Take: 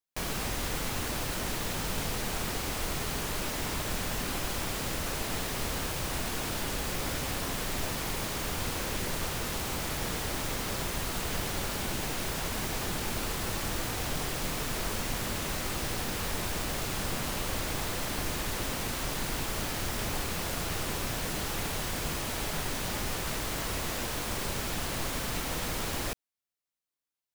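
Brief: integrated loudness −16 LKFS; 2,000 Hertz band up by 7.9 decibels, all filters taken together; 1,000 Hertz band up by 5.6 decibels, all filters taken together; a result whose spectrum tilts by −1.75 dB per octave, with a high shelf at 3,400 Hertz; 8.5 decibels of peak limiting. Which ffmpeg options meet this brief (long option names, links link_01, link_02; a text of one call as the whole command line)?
ffmpeg -i in.wav -af "equalizer=frequency=1000:width_type=o:gain=4.5,equalizer=frequency=2000:width_type=o:gain=6,highshelf=frequency=3400:gain=8,volume=15dB,alimiter=limit=-8dB:level=0:latency=1" out.wav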